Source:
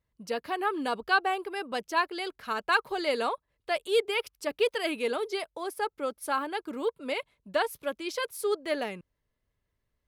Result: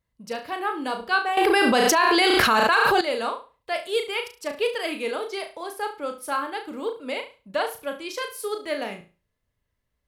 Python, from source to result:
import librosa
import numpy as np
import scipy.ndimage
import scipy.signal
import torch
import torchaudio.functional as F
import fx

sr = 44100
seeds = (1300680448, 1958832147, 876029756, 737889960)

y = fx.peak_eq(x, sr, hz=380.0, db=-3.5, octaves=0.41)
y = fx.room_flutter(y, sr, wall_m=6.1, rt60_s=0.33)
y = fx.wow_flutter(y, sr, seeds[0], rate_hz=2.1, depth_cents=16.0)
y = fx.env_flatten(y, sr, amount_pct=100, at=(1.37, 3.01))
y = F.gain(torch.from_numpy(y), 1.5).numpy()